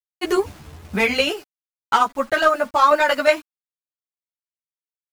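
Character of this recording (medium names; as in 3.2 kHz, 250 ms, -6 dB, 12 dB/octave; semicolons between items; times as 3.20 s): tremolo saw down 11 Hz, depth 45%; a quantiser's noise floor 8-bit, dither none; a shimmering, thickened sound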